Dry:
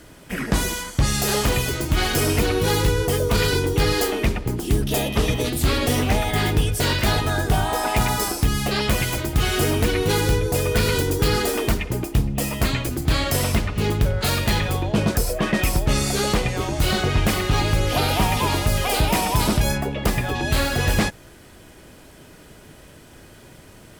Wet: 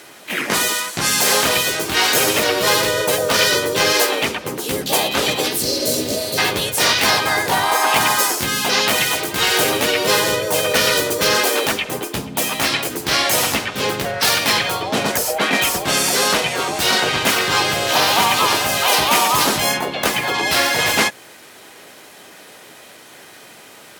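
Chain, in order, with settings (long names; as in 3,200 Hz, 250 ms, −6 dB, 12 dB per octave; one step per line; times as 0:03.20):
meter weighting curve A
pitch-shifted copies added +4 semitones 0 dB
high-shelf EQ 11,000 Hz +5.5 dB
healed spectral selection 0:05.63–0:06.36, 680–3,900 Hz before
level +4.5 dB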